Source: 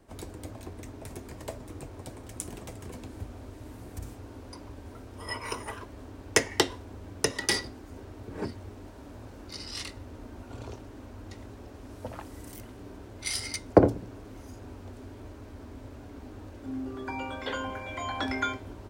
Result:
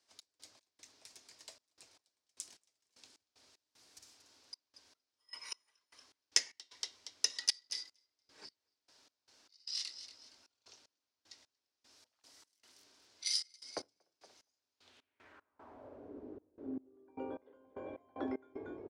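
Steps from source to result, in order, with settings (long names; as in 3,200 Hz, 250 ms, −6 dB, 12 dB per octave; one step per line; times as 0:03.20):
band-pass filter sweep 5,000 Hz → 390 Hz, 0:14.72–0:16.13
echo with shifted repeats 234 ms, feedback 33%, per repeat +48 Hz, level −11.5 dB
gate pattern "x.x.xxxx.x..x.." 76 BPM −24 dB
level +1.5 dB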